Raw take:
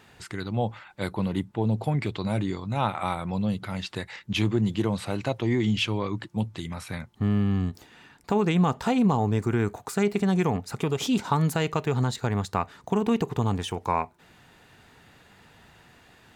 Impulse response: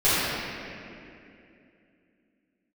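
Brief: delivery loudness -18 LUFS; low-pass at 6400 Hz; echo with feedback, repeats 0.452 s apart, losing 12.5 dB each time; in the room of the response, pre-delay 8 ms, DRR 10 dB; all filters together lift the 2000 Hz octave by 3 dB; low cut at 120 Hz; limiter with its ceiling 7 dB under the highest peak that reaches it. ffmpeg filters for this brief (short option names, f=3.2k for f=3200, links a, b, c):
-filter_complex "[0:a]highpass=120,lowpass=6.4k,equalizer=f=2k:t=o:g=4,alimiter=limit=-15.5dB:level=0:latency=1,aecho=1:1:452|904|1356:0.237|0.0569|0.0137,asplit=2[a][b];[1:a]atrim=start_sample=2205,adelay=8[c];[b][c]afir=irnorm=-1:irlink=0,volume=-29.5dB[d];[a][d]amix=inputs=2:normalize=0,volume=10dB"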